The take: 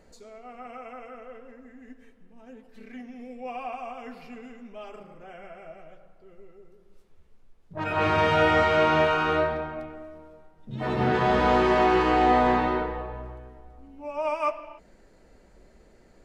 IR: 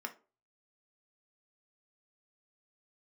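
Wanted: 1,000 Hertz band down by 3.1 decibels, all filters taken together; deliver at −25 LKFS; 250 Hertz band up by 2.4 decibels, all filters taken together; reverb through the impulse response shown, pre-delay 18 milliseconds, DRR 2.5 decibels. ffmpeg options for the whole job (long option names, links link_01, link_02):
-filter_complex "[0:a]equalizer=frequency=250:width_type=o:gain=3.5,equalizer=frequency=1000:width_type=o:gain=-4.5,asplit=2[link_01][link_02];[1:a]atrim=start_sample=2205,adelay=18[link_03];[link_02][link_03]afir=irnorm=-1:irlink=0,volume=-2.5dB[link_04];[link_01][link_04]amix=inputs=2:normalize=0,volume=-1.5dB"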